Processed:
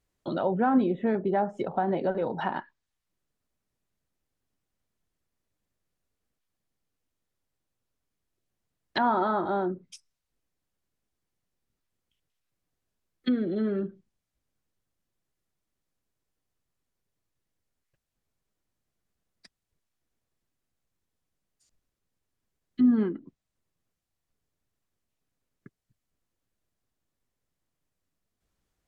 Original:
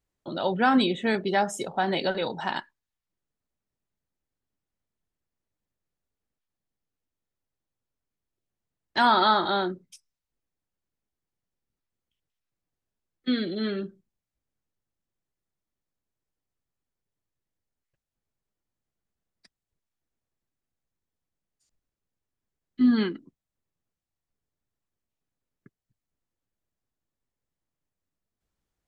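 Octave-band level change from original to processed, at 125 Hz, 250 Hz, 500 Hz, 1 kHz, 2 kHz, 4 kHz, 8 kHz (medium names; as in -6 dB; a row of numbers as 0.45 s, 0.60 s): +1.0 dB, 0.0 dB, 0.0 dB, -4.0 dB, -8.5 dB, -14.0 dB, no reading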